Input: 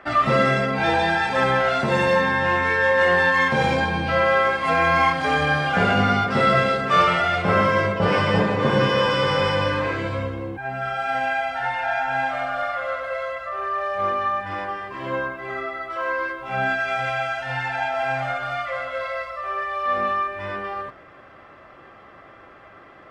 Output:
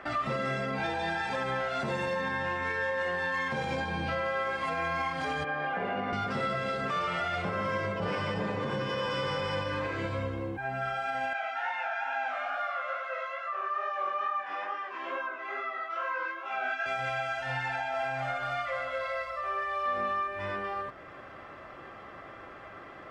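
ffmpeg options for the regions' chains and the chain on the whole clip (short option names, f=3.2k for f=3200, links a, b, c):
-filter_complex "[0:a]asettb=1/sr,asplit=3[a][b][c];[a]atrim=end=5.444[d];[b]atrim=start=5.44:end=6.13,asetpts=PTS-STARTPTS,afade=t=in:d=0.004:c=qsin,afade=t=out:st=0.686:d=0.004:c=qsin,acrossover=split=220 2600:gain=0.158 1 0.0708[e][f][g];[e][f][g]amix=inputs=3:normalize=0,bandreject=f=1.4k:w=10[h];[c]atrim=start=6.126[i];[d][h]acrossfade=d=0.004:c1=hsin:c2=qsin[j];[j][i]acrossfade=d=0.004:c1=qsin:c2=hsin,asettb=1/sr,asplit=3[k][l][m];[k]atrim=end=11.334[n];[l]atrim=start=11.33:end=16.86,asetpts=PTS-STARTPTS,afade=t=in:d=0.004:c=qsin,afade=t=out:st=5.526:d=0.004:c=qsin,flanger=delay=16:depth=5.8:speed=2.3,highpass=f=330:w=0.5412,highpass=f=330:w=1.3066,equalizer=f=350:t=q:w=4:g=-4,equalizer=f=510:t=q:w=4:g=-4,equalizer=f=1.3k:t=q:w=4:g=4,equalizer=f=2.6k:t=q:w=4:g=4,equalizer=f=4.5k:t=q:w=4:g=-4,lowpass=f=6.7k:w=0.5412,lowpass=f=6.7k:w=1.3066[o];[m]atrim=start=16.856[p];[n][o]acrossfade=d=0.004:c1=hsin:c2=qsin[q];[q][p]acrossfade=d=0.004:c1=qsin:c2=hsin,equalizer=f=6.9k:t=o:w=0.77:g=2,acompressor=threshold=-40dB:ratio=1.5,alimiter=limit=-23dB:level=0:latency=1:release=141"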